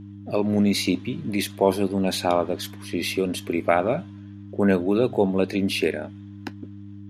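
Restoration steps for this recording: de-hum 100.5 Hz, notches 3

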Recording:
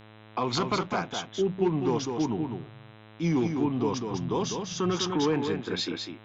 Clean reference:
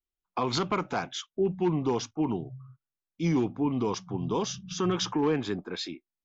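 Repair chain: de-hum 108.2 Hz, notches 37; inverse comb 202 ms -5.5 dB; trim 0 dB, from 5.67 s -4 dB

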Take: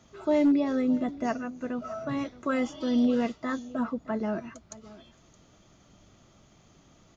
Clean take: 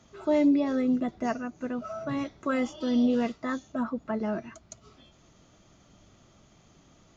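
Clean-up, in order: clip repair -17 dBFS; inverse comb 620 ms -19.5 dB

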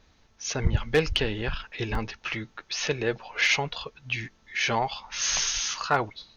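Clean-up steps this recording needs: clip repair -12 dBFS; interpolate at 1.95 s, 2.4 ms

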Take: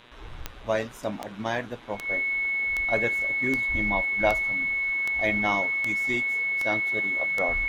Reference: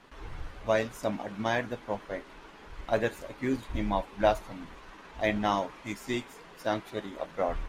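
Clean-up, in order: de-click; de-hum 119.5 Hz, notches 33; band-stop 2.2 kHz, Q 30

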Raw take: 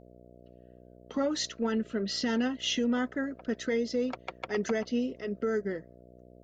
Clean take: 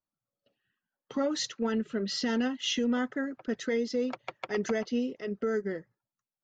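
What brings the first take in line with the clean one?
de-hum 61.1 Hz, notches 11

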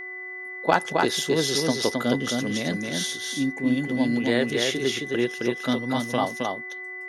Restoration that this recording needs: clip repair -6.5 dBFS; de-hum 369.7 Hz, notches 6; band-stop 2 kHz, Q 30; inverse comb 266 ms -3.5 dB

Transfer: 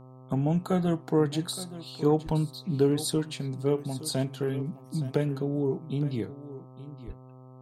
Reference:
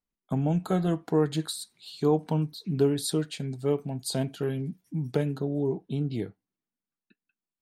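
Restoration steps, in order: de-hum 128.7 Hz, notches 10; de-plosive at 2.25/7.06 s; inverse comb 869 ms -15 dB

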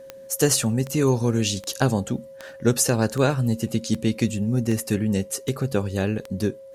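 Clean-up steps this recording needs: de-click; band-stop 540 Hz, Q 30

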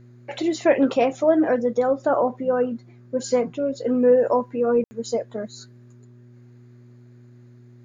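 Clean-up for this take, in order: de-hum 121.2 Hz, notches 3; room tone fill 4.84–4.91 s

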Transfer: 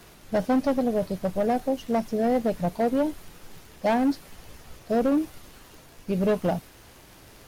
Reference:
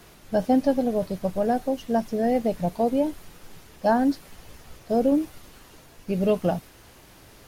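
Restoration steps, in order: clip repair -18 dBFS; de-click

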